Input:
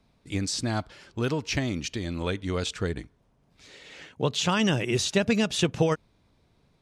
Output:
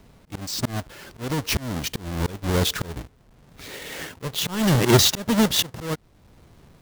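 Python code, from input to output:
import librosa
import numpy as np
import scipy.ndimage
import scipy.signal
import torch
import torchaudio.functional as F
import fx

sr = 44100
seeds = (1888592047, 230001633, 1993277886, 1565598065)

y = fx.halfwave_hold(x, sr)
y = fx.auto_swell(y, sr, attack_ms=587.0)
y = fx.dynamic_eq(y, sr, hz=2500.0, q=5.8, threshold_db=-54.0, ratio=4.0, max_db=-5)
y = F.gain(torch.from_numpy(y), 8.5).numpy()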